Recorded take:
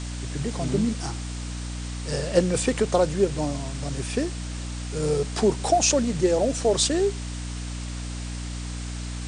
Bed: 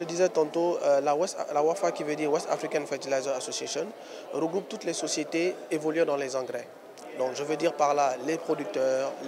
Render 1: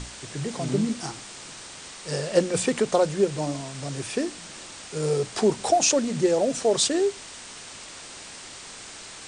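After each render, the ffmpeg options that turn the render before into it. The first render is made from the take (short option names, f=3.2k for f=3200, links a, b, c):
-af "bandreject=f=60:t=h:w=6,bandreject=f=120:t=h:w=6,bandreject=f=180:t=h:w=6,bandreject=f=240:t=h:w=6,bandreject=f=300:t=h:w=6"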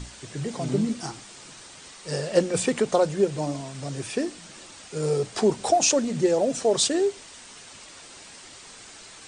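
-af "afftdn=nr=6:nf=-42"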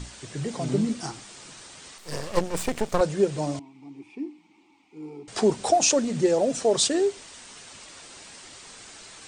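-filter_complex "[0:a]asettb=1/sr,asplit=3[a][b][c];[a]atrim=end=1.984[d];[b]atrim=start=1.98:end=3.01,asetpts=PTS-STARTPTS,afade=t=in:d=0.004:c=qsin,afade=t=out:st=1.026:d=0.004:c=qsin,aeval=exprs='max(val(0),0)':c=same[e];[c]atrim=start=3.006[f];[d][e]acrossfade=d=0.004:c1=hsin:c2=qsin[g];[g][f]acrossfade=d=0.004:c1=qsin:c2=hsin,asettb=1/sr,asplit=3[h][i][j];[h]atrim=end=3.594[k];[i]atrim=start=3.59:end=5.28,asetpts=PTS-STARTPTS,afade=t=in:d=0.004:c=qsin,afade=t=out:st=1.686:d=0.004:c=qsin,asplit=3[l][m][n];[l]bandpass=f=300:t=q:w=8,volume=0dB[o];[m]bandpass=f=870:t=q:w=8,volume=-6dB[p];[n]bandpass=f=2.24k:t=q:w=8,volume=-9dB[q];[o][p][q]amix=inputs=3:normalize=0[r];[j]atrim=start=5.276[s];[k][r]acrossfade=d=0.004:c1=hsin:c2=qsin[t];[t][s]acrossfade=d=0.004:c1=qsin:c2=hsin"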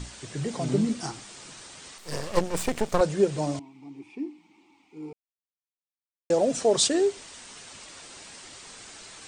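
-filter_complex "[0:a]asplit=3[a][b][c];[a]atrim=end=5.13,asetpts=PTS-STARTPTS,afade=t=out:st=5.126:d=0.004:c=hsin[d];[b]atrim=start=5.13:end=6.3,asetpts=PTS-STARTPTS,volume=0[e];[c]atrim=start=6.3,asetpts=PTS-STARTPTS,afade=t=in:d=0.004:c=hsin[f];[d][e][f]concat=n=3:v=0:a=1"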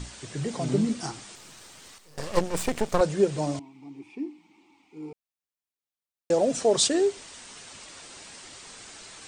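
-filter_complex "[0:a]asettb=1/sr,asplit=3[a][b][c];[a]atrim=end=1.354[d];[b]atrim=start=1.35:end=2.18,asetpts=PTS-STARTPTS,afade=t=in:d=0.004:c=qsin,afade=t=out:st=0.826:d=0.004:c=qsin,aeval=exprs='(tanh(126*val(0)+0.55)-tanh(0.55))/126':c=same[e];[c]atrim=start=2.176[f];[d][e]acrossfade=d=0.004:c1=hsin:c2=qsin[g];[g][f]acrossfade=d=0.004:c1=qsin:c2=hsin"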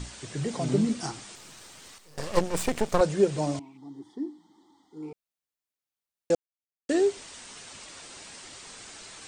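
-filter_complex "[0:a]asettb=1/sr,asplit=3[a][b][c];[a]atrim=end=3.774[d];[b]atrim=start=3.77:end=5.03,asetpts=PTS-STARTPTS,afade=t=in:d=0.004:c=qsin,afade=t=out:st=1.256:d=0.004:c=qsin,asuperstop=centerf=2500:order=12:qfactor=2.3[e];[c]atrim=start=5.026[f];[d][e]acrossfade=d=0.004:c1=hsin:c2=qsin[g];[g][f]acrossfade=d=0.004:c1=qsin:c2=hsin,asplit=3[h][i][j];[h]atrim=end=6.35,asetpts=PTS-STARTPTS,afade=t=out:st=6.346:d=0.004:c=hsin[k];[i]atrim=start=6.35:end=6.89,asetpts=PTS-STARTPTS,volume=0[l];[j]atrim=start=6.89,asetpts=PTS-STARTPTS,afade=t=in:d=0.004:c=hsin[m];[k][l][m]concat=n=3:v=0:a=1"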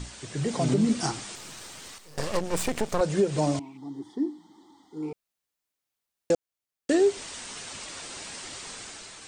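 -af "dynaudnorm=f=150:g=7:m=5.5dB,alimiter=limit=-14dB:level=0:latency=1:release=168"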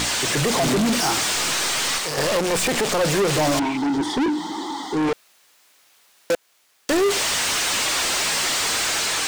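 -filter_complex "[0:a]asplit=2[a][b];[b]highpass=f=720:p=1,volume=39dB,asoftclip=type=tanh:threshold=-13.5dB[c];[a][c]amix=inputs=2:normalize=0,lowpass=f=6k:p=1,volume=-6dB"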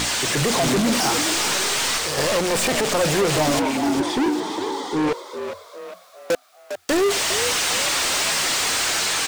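-filter_complex "[0:a]asplit=6[a][b][c][d][e][f];[b]adelay=404,afreqshift=87,volume=-9dB[g];[c]adelay=808,afreqshift=174,volume=-15.6dB[h];[d]adelay=1212,afreqshift=261,volume=-22.1dB[i];[e]adelay=1616,afreqshift=348,volume=-28.7dB[j];[f]adelay=2020,afreqshift=435,volume=-35.2dB[k];[a][g][h][i][j][k]amix=inputs=6:normalize=0"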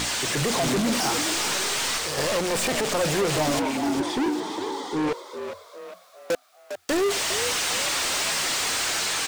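-af "volume=-4dB"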